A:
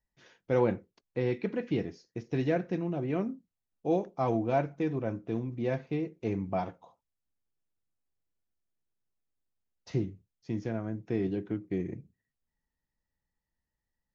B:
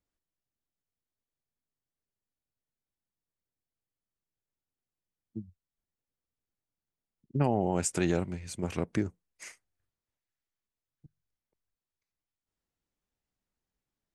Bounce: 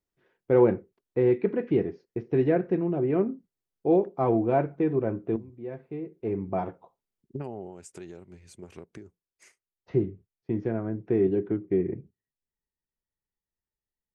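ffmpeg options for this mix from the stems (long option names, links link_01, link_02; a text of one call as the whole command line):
ffmpeg -i stem1.wav -i stem2.wav -filter_complex "[0:a]agate=range=-12dB:threshold=-52dB:ratio=16:detection=peak,lowpass=2000,volume=3dB[link_01];[1:a]acompressor=threshold=-31dB:ratio=12,volume=-2dB,afade=type=out:start_time=7.54:duration=0.21:silence=0.375837,afade=type=out:start_time=9.45:duration=0.23:silence=0.237137,asplit=2[link_02][link_03];[link_03]apad=whole_len=623727[link_04];[link_01][link_04]sidechaincompress=threshold=-50dB:ratio=10:attack=7.4:release=1140[link_05];[link_05][link_02]amix=inputs=2:normalize=0,equalizer=frequency=390:width=3.9:gain=9" out.wav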